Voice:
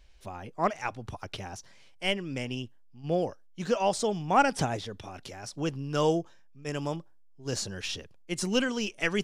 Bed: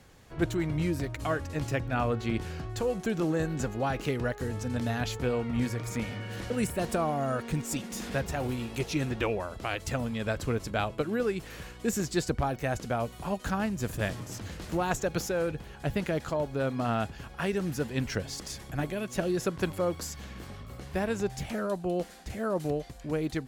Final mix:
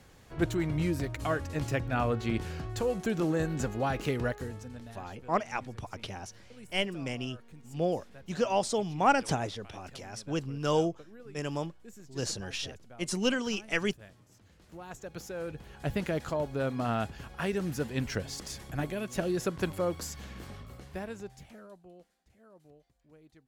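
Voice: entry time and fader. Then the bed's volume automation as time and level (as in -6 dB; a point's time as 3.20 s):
4.70 s, -1.5 dB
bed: 4.29 s -0.5 dB
5.05 s -21.5 dB
14.46 s -21.5 dB
15.88 s -1.5 dB
20.57 s -1.5 dB
22.19 s -27.5 dB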